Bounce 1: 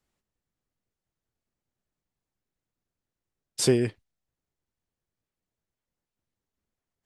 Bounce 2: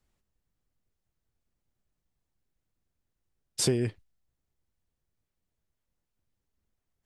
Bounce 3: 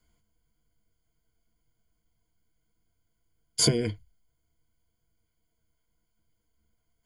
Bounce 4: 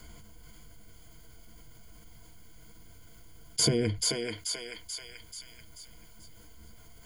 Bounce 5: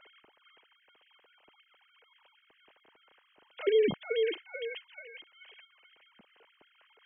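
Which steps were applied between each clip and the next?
bass shelf 95 Hz +11 dB; compression 3:1, threshold -24 dBFS, peak gain reduction 7.5 dB
rippled EQ curve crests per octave 1.8, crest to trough 16 dB; trim +2.5 dB
thinning echo 435 ms, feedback 32%, high-pass 950 Hz, level -5 dB; level flattener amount 50%; trim -4 dB
formants replaced by sine waves

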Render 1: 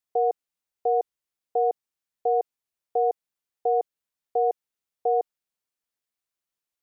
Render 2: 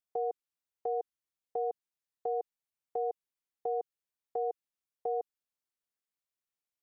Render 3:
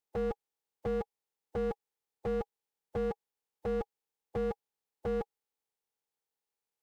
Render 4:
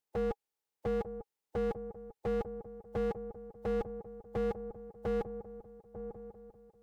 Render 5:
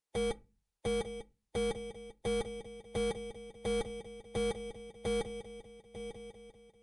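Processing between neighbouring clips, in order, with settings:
dynamic bell 630 Hz, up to -7 dB, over -37 dBFS, Q 2.4; trim -7 dB
spectral peaks clipped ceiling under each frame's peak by 20 dB; small resonant body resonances 450/820 Hz, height 13 dB, ringing for 40 ms; slew-rate limiter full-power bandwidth 13 Hz
feedback echo behind a low-pass 897 ms, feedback 54%, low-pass 880 Hz, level -10 dB
bit-reversed sample order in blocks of 16 samples; on a send at -17 dB: reverberation RT60 0.30 s, pre-delay 4 ms; on the sum: MP3 112 kbps 24 kHz

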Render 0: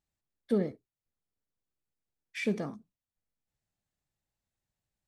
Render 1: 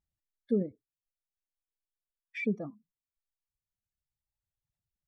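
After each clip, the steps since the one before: spectral contrast enhancement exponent 1.7; reverb removal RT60 1.8 s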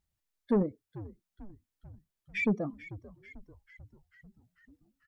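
saturation -25 dBFS, distortion -13 dB; frequency-shifting echo 442 ms, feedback 62%, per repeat -97 Hz, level -16.5 dB; trim +5.5 dB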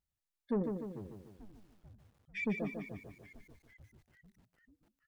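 bit-crushed delay 148 ms, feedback 55%, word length 10-bit, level -5.5 dB; trim -7 dB

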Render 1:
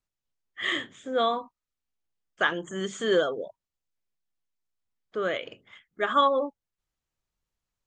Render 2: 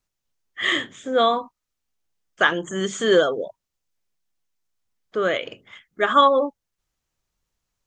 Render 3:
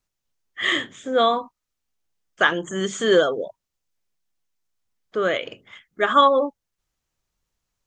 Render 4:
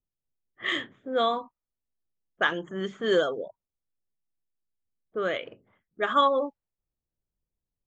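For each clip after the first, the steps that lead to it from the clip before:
peaking EQ 6.1 kHz +3 dB 0.56 oct; trim +6.5 dB
no audible change
level-controlled noise filter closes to 500 Hz, open at -14.5 dBFS; trim -6.5 dB

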